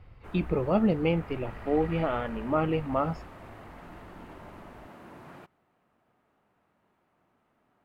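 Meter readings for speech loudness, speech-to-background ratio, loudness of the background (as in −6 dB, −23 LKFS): −28.5 LKFS, 18.5 dB, −47.0 LKFS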